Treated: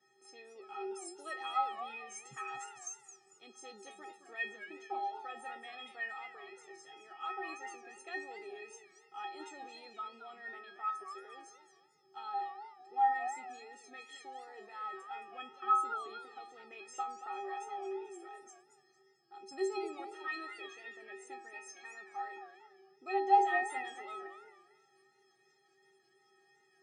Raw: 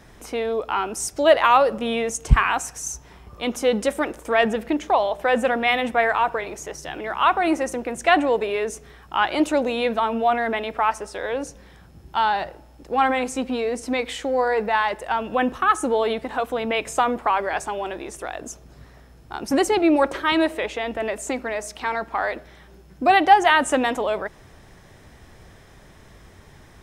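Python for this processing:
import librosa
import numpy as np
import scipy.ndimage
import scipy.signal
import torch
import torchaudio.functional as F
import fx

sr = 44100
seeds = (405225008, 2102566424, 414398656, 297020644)

y = scipy.signal.sosfilt(scipy.signal.cheby1(5, 1.0, [130.0, 8900.0], 'bandpass', fs=sr, output='sos'), x)
y = fx.notch(y, sr, hz=990.0, q=11.0)
y = fx.stiff_resonator(y, sr, f0_hz=380.0, decay_s=0.63, stiffness=0.03)
y = fx.echo_warbled(y, sr, ms=223, feedback_pct=34, rate_hz=2.8, cents=195, wet_db=-11.5)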